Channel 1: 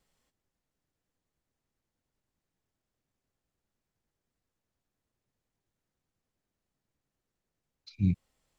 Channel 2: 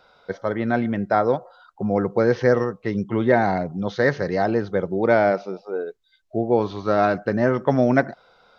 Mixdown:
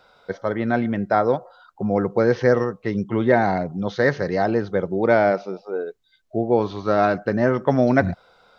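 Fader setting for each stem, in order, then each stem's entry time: 0.0 dB, +0.5 dB; 0.00 s, 0.00 s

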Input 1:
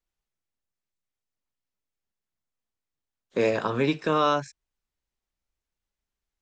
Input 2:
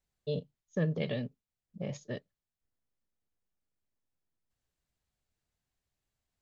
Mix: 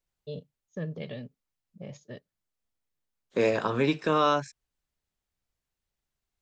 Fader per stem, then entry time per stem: -1.0 dB, -4.5 dB; 0.00 s, 0.00 s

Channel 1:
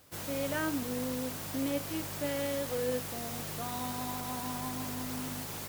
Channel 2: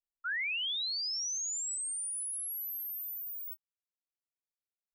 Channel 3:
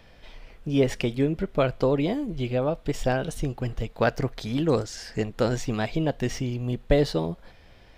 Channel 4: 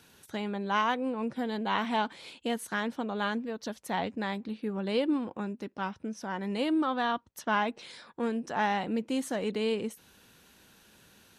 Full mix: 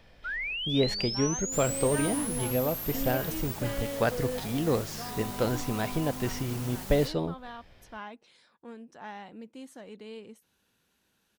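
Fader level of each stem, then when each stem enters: -1.5 dB, +0.5 dB, -4.0 dB, -14.0 dB; 1.40 s, 0.00 s, 0.00 s, 0.45 s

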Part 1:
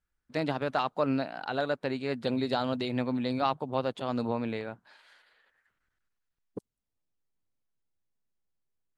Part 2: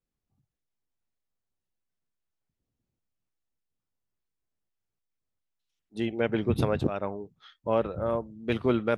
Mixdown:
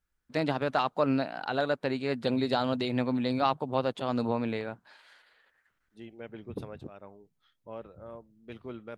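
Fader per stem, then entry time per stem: +1.5 dB, -16.5 dB; 0.00 s, 0.00 s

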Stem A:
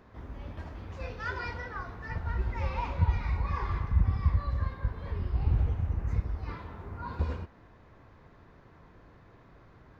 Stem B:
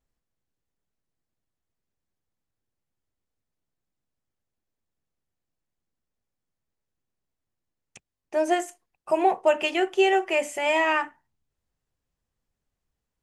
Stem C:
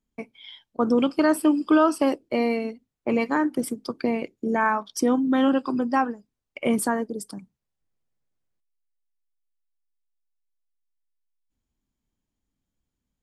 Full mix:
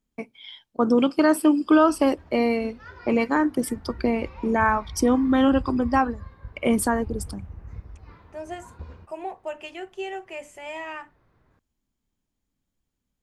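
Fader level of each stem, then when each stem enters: -9.0 dB, -12.5 dB, +1.5 dB; 1.60 s, 0.00 s, 0.00 s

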